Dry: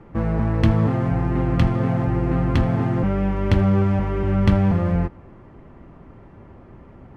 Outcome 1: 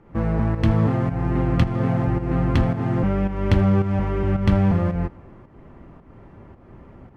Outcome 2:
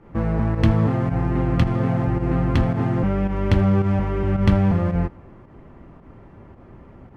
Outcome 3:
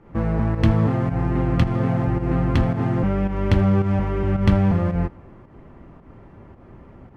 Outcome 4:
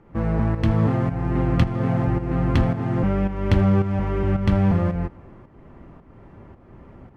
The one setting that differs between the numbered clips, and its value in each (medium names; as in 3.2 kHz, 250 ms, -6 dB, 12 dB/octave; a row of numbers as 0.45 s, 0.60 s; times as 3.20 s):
volume shaper, release: 276 ms, 91 ms, 142 ms, 411 ms